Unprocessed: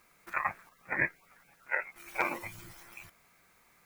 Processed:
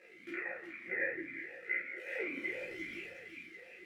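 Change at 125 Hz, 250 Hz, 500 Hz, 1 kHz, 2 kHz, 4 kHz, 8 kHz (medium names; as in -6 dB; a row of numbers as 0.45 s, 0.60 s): -12.5 dB, +1.0 dB, +0.5 dB, -19.0 dB, -3.0 dB, 0.0 dB, under -10 dB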